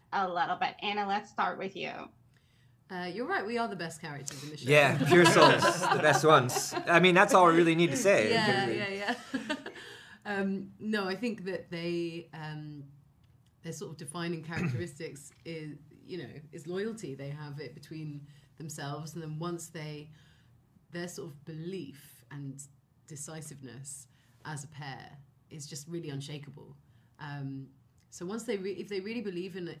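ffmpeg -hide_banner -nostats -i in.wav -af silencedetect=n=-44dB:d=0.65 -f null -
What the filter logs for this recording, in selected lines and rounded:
silence_start: 2.06
silence_end: 2.90 | silence_duration: 0.83
silence_start: 12.83
silence_end: 13.65 | silence_duration: 0.82
silence_start: 20.04
silence_end: 20.94 | silence_duration: 0.90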